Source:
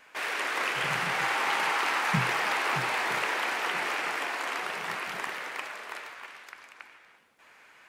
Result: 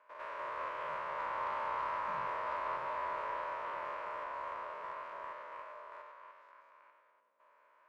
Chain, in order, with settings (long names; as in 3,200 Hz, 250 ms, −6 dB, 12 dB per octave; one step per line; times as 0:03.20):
spectrum averaged block by block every 100 ms
pair of resonant band-passes 770 Hz, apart 0.72 octaves
harmonic generator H 4 −27 dB, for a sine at −27 dBFS
level +1 dB